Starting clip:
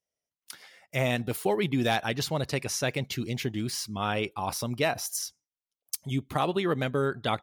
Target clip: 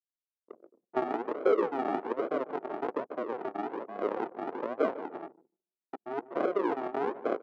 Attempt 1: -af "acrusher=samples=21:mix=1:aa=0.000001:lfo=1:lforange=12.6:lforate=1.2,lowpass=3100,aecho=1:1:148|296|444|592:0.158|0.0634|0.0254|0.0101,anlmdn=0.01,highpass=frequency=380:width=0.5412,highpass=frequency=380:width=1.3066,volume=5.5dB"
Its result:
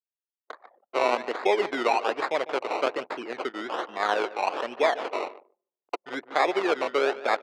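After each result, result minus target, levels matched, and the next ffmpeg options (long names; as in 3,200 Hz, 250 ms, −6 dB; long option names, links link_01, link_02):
4,000 Hz band +14.5 dB; sample-and-hold swept by an LFO: distortion −13 dB
-af "acrusher=samples=21:mix=1:aa=0.000001:lfo=1:lforange=12.6:lforate=1.2,lowpass=980,aecho=1:1:148|296|444|592:0.158|0.0634|0.0254|0.0101,anlmdn=0.01,highpass=frequency=380:width=0.5412,highpass=frequency=380:width=1.3066,volume=5.5dB"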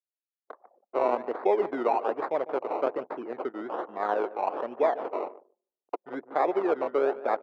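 sample-and-hold swept by an LFO: distortion −13 dB
-af "acrusher=samples=68:mix=1:aa=0.000001:lfo=1:lforange=40.8:lforate=1.2,lowpass=980,aecho=1:1:148|296|444|592:0.158|0.0634|0.0254|0.0101,anlmdn=0.01,highpass=frequency=380:width=0.5412,highpass=frequency=380:width=1.3066,volume=5.5dB"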